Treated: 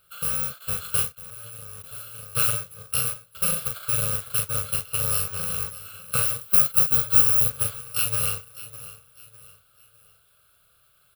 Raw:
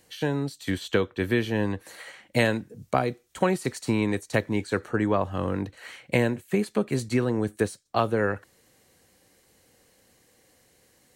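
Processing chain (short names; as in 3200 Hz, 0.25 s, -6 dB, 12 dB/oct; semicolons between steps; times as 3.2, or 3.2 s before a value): FFT order left unsorted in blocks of 128 samples; bell 1400 Hz +8.5 dB 0.59 oct; fixed phaser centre 1300 Hz, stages 8; doubler 38 ms -4.5 dB; feedback echo 0.604 s, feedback 37%, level -16 dB; modulation noise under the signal 15 dB; 1.12–1.84 level quantiser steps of 20 dB; 6.41–7.5 high shelf 12000 Hz +8 dB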